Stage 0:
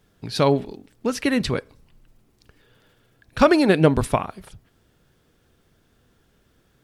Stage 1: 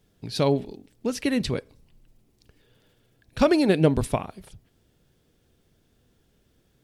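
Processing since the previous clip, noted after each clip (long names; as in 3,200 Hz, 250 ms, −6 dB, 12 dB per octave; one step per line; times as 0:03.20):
parametric band 1,300 Hz −7 dB 1.3 octaves
level −2.5 dB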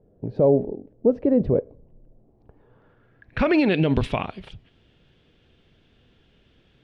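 brickwall limiter −16.5 dBFS, peak gain reduction 11 dB
low-pass filter sweep 560 Hz → 3,000 Hz, 0:02.11–0:03.75
level +5 dB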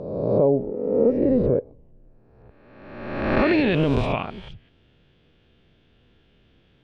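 peak hold with a rise ahead of every peak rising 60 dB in 1.27 s
high-frequency loss of the air 71 metres
level −2.5 dB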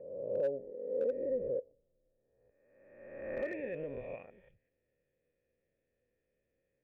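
formant resonators in series e
slew-rate limiting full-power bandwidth 65 Hz
level −8.5 dB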